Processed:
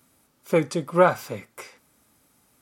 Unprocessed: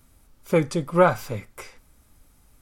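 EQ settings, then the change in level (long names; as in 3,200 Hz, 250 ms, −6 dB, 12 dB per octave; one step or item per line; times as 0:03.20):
high-pass filter 170 Hz 12 dB per octave
0.0 dB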